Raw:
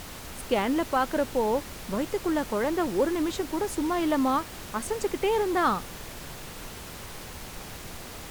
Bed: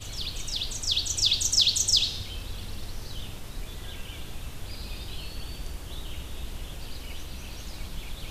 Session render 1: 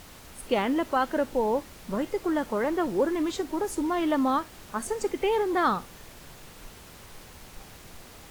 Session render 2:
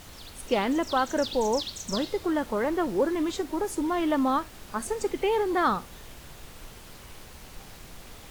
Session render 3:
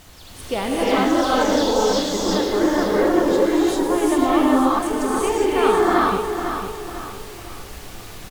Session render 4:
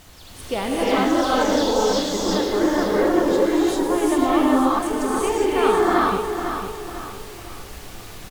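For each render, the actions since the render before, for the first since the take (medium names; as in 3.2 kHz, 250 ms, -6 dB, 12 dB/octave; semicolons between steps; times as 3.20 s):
noise print and reduce 7 dB
add bed -14 dB
feedback delay 501 ms, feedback 41%, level -8 dB; gated-style reverb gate 440 ms rising, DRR -7 dB
trim -1 dB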